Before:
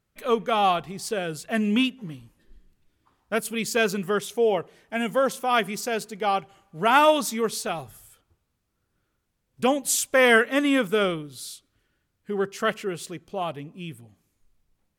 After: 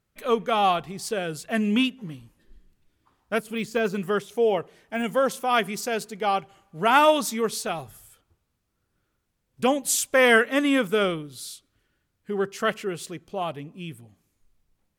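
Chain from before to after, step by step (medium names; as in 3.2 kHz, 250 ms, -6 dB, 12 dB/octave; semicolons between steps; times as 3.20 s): 3.40–5.04 s: de-esser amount 95%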